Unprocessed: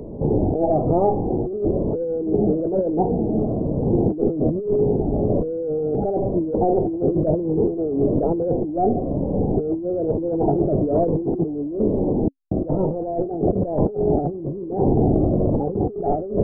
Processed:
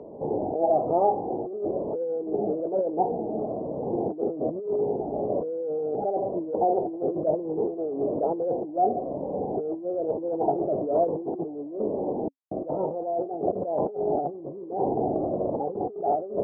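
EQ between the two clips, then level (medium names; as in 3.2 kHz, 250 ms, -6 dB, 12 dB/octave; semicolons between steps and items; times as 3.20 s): band-pass filter 800 Hz, Q 1.3; 0.0 dB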